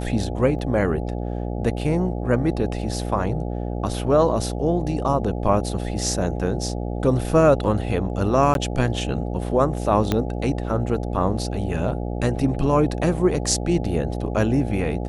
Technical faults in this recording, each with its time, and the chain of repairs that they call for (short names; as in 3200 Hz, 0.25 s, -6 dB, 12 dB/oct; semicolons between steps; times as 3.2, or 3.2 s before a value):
buzz 60 Hz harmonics 14 -27 dBFS
0.59 gap 2.1 ms
8.54–8.55 gap 12 ms
10.12 pop -7 dBFS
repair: de-click; de-hum 60 Hz, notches 14; interpolate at 0.59, 2.1 ms; interpolate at 8.54, 12 ms